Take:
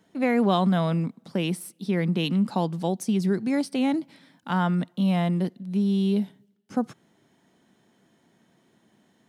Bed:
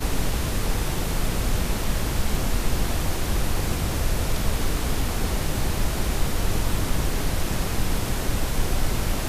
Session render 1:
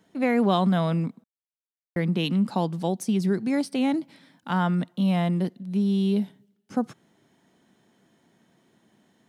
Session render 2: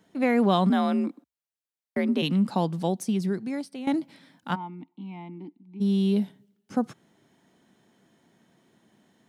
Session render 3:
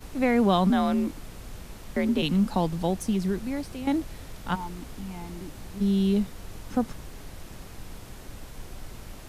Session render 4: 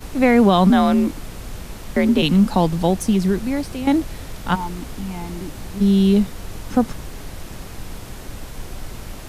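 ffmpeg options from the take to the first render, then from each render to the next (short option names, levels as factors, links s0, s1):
-filter_complex "[0:a]asplit=3[s0][s1][s2];[s0]atrim=end=1.24,asetpts=PTS-STARTPTS,afade=t=out:st=1.236:d=0.004:c=hsin[s3];[s1]atrim=start=1.24:end=1.96,asetpts=PTS-STARTPTS,volume=0[s4];[s2]atrim=start=1.96,asetpts=PTS-STARTPTS,afade=t=in:d=0.004:c=hsin[s5];[s3][s4][s5]concat=n=3:v=0:a=1"
-filter_complex "[0:a]asplit=3[s0][s1][s2];[s0]afade=t=out:st=0.69:d=0.02[s3];[s1]afreqshift=56,afade=t=in:st=0.69:d=0.02,afade=t=out:st=2.21:d=0.02[s4];[s2]afade=t=in:st=2.21:d=0.02[s5];[s3][s4][s5]amix=inputs=3:normalize=0,asplit=3[s6][s7][s8];[s6]afade=t=out:st=4.54:d=0.02[s9];[s7]asplit=3[s10][s11][s12];[s10]bandpass=f=300:t=q:w=8,volume=1[s13];[s11]bandpass=f=870:t=q:w=8,volume=0.501[s14];[s12]bandpass=f=2240:t=q:w=8,volume=0.355[s15];[s13][s14][s15]amix=inputs=3:normalize=0,afade=t=in:st=4.54:d=0.02,afade=t=out:st=5.8:d=0.02[s16];[s8]afade=t=in:st=5.8:d=0.02[s17];[s9][s16][s17]amix=inputs=3:normalize=0,asplit=2[s18][s19];[s18]atrim=end=3.87,asetpts=PTS-STARTPTS,afade=t=out:st=2.87:d=1:silence=0.199526[s20];[s19]atrim=start=3.87,asetpts=PTS-STARTPTS,afade=t=in:d=0.004:c=hsin:silence=0.199526[s21];[s20][s21]concat=n=2:v=0:a=1"
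-filter_complex "[1:a]volume=0.133[s0];[0:a][s0]amix=inputs=2:normalize=0"
-af "volume=2.66,alimiter=limit=0.708:level=0:latency=1"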